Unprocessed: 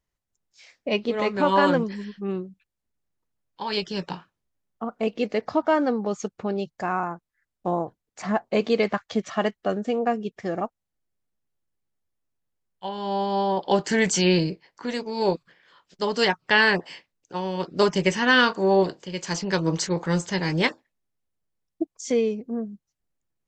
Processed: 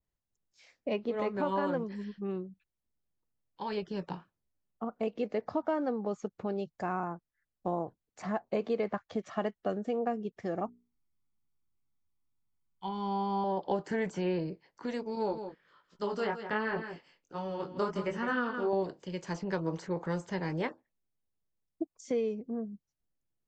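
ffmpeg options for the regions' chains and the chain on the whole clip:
-filter_complex "[0:a]asettb=1/sr,asplit=3[a][b][c];[a]atrim=end=10.654[d];[b]atrim=start=10.65:end=13.44,asetpts=PTS-STARTPTS,afade=t=in:d=0.004:c=qsin,afade=t=out:st=2.786:d=0.004:c=qsin,bandreject=f=60:t=h:w=6,bandreject=f=120:t=h:w=6,bandreject=f=180:t=h:w=6,bandreject=f=240:t=h:w=6,bandreject=f=300:t=h:w=6,bandreject=f=360:t=h:w=6,bandreject=f=420:t=h:w=6,aecho=1:1:0.9:0.82,atrim=end_sample=123039[e];[c]atrim=start=13.436[f];[d][e]acrossfade=d=0.004:c1=hsin:c2=qsin[g];[g][f]acrossfade=d=0.004:c1=qsin:c2=hsin,asettb=1/sr,asplit=3[h][i][j];[h]atrim=end=15.154[k];[i]atrim=start=15.15:end=18.73,asetpts=PTS-STARTPTS,afade=t=in:d=0.004:c=qsin,afade=t=out:st=3.576:d=0.004:c=qsin,flanger=delay=17.5:depth=6.2:speed=1.3,equalizer=f=1.3k:w=4.8:g=9.5,aecho=1:1:163:0.282,atrim=end_sample=157878[l];[j]atrim=start=18.726[m];[k][l]acrossfade=d=0.004:c1=hsin:c2=qsin[n];[n][m]acrossfade=d=0.004:c1=qsin:c2=hsin,tiltshelf=f=970:g=3.5,acrossover=split=440|2400[o][p][q];[o]acompressor=threshold=-28dB:ratio=4[r];[p]acompressor=threshold=-23dB:ratio=4[s];[q]acompressor=threshold=-44dB:ratio=4[t];[r][s][t]amix=inputs=3:normalize=0,adynamicequalizer=threshold=0.00891:dfrequency=1900:dqfactor=0.7:tfrequency=1900:tqfactor=0.7:attack=5:release=100:ratio=0.375:range=3:mode=cutabove:tftype=highshelf,volume=-7dB"

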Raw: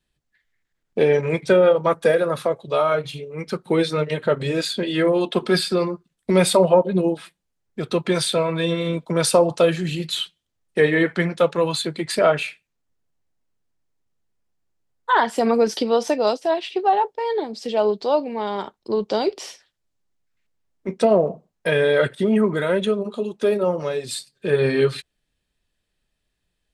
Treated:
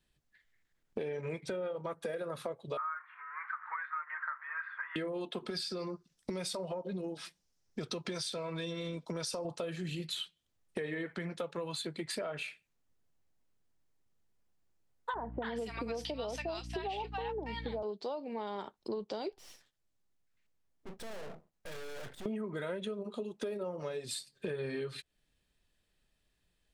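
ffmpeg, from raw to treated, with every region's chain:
-filter_complex "[0:a]asettb=1/sr,asplit=3[a][b][c];[a]atrim=end=2.774[d];[b]atrim=start=2.77:end=4.96,asetpts=PTS-STARTPTS,afade=t=in:d=0.004:c=qsin,afade=t=out:st=2.186:d=0.004:c=qsin,aeval=exprs='val(0)+0.5*0.0211*sgn(val(0))':c=same,asuperpass=centerf=1400:order=8:qfactor=1.4,equalizer=f=1.4k:t=o:w=0.98:g=6.5[e];[c]atrim=start=4.956[f];[d][e]acrossfade=d=0.004:c1=hsin:c2=qsin[g];[g][f]acrossfade=d=0.004:c1=qsin:c2=hsin,asettb=1/sr,asplit=3[h][i][j];[h]atrim=end=5.504[k];[i]atrim=start=5.5:end=9.45,asetpts=PTS-STARTPTS,afade=t=in:d=0.004:c=qsin,afade=t=out:st=3.946:d=0.004:c=qsin,acompressor=threshold=-23dB:ratio=2.5:attack=3.2:release=140:knee=1:detection=peak,equalizer=f=5.5k:t=o:w=0.63:g=13[l];[j]atrim=start=9.446[m];[k][l]acrossfade=d=0.004:c1=hsin:c2=qsin[n];[n][m]acrossfade=d=0.004:c1=qsin:c2=hsin,asettb=1/sr,asplit=3[o][p][q];[o]atrim=end=15.144[r];[p]atrim=start=15.14:end=17.83,asetpts=PTS-STARTPTS,afade=t=in:d=0.004:c=qsin,afade=t=out:st=2.686:d=0.004:c=qsin,equalizer=f=2.6k:w=1.2:g=7.5,aeval=exprs='val(0)+0.0251*(sin(2*PI*60*n/s)+sin(2*PI*2*60*n/s)/2+sin(2*PI*3*60*n/s)/3+sin(2*PI*4*60*n/s)/4+sin(2*PI*5*60*n/s)/5)':c=same,acrossover=split=970[s][t];[t]adelay=280[u];[s][u]amix=inputs=2:normalize=0,atrim=end_sample=118629[v];[q]atrim=start=17.826[w];[r][v]acrossfade=d=0.004:c1=hsin:c2=qsin[x];[x][w]acrossfade=d=0.004:c1=qsin:c2=hsin,asettb=1/sr,asplit=3[y][z][aa];[y]atrim=end=19.324[ab];[z]atrim=start=19.32:end=22.26,asetpts=PTS-STARTPTS,afade=t=in:d=0.004:c=qsin,afade=t=out:st=2.936:d=0.004:c=qsin,aeval=exprs='(tanh(35.5*val(0)+0.55)-tanh(0.55))/35.5':c=same,aeval=exprs='max(val(0),0)':c=same[ac];[aa]atrim=start=22.256[ad];[ab][ac]acrossfade=d=0.004:c1=hsin:c2=qsin[ae];[ae][ad]acrossfade=d=0.004:c1=qsin:c2=hsin,alimiter=limit=-12.5dB:level=0:latency=1:release=94,acompressor=threshold=-35dB:ratio=6,volume=-1.5dB"

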